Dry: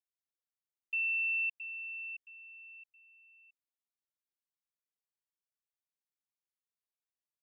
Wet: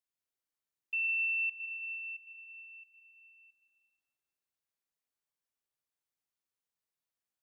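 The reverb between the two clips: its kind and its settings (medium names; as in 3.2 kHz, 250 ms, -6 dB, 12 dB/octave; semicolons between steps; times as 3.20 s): plate-style reverb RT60 2.7 s, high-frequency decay 0.4×, pre-delay 105 ms, DRR 1.5 dB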